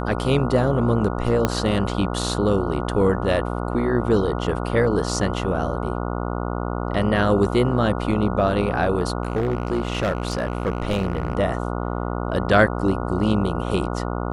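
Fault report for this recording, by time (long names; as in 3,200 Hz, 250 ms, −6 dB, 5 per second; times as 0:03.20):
mains buzz 60 Hz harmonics 24 −26 dBFS
0:01.45: click −5 dBFS
0:09.23–0:11.35: clipping −17 dBFS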